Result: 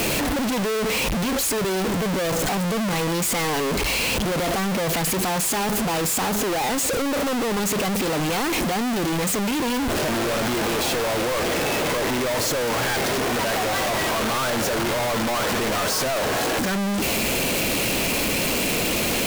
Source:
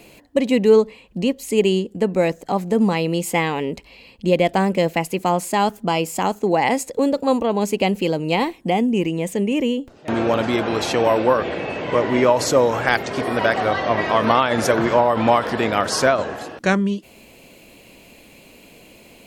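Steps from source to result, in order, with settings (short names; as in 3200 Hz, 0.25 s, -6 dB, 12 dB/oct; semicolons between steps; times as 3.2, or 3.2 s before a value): infinite clipping; gain -3 dB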